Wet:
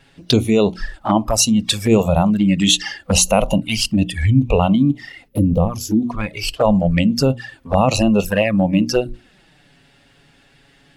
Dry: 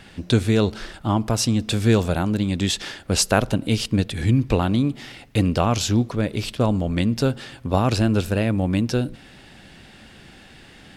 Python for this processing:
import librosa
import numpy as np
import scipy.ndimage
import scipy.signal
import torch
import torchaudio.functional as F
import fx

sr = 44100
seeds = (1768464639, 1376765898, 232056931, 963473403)

p1 = fx.spec_box(x, sr, start_s=5.28, length_s=0.74, low_hz=540.0, high_hz=10000.0, gain_db=-11)
p2 = fx.noise_reduce_blind(p1, sr, reduce_db=16)
p3 = fx.env_flanger(p2, sr, rest_ms=7.5, full_db=-21.0)
p4 = fx.over_compress(p3, sr, threshold_db=-25.0, ratio=-0.5)
p5 = p3 + (p4 * 10.0 ** (-1.0 / 20.0))
p6 = fx.hum_notches(p5, sr, base_hz=60, count=6)
y = p6 * 10.0 ** (5.5 / 20.0)